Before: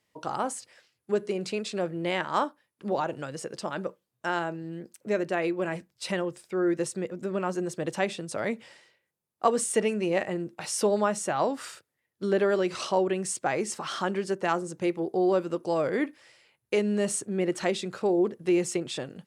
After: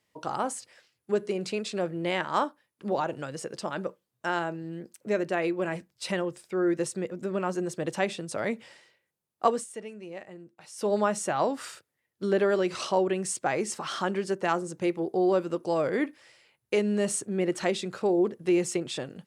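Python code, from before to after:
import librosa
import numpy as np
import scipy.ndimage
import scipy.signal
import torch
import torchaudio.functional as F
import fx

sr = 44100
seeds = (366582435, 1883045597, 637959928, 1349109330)

y = fx.edit(x, sr, fx.fade_down_up(start_s=9.48, length_s=1.46, db=-14.5, fade_s=0.18), tone=tone)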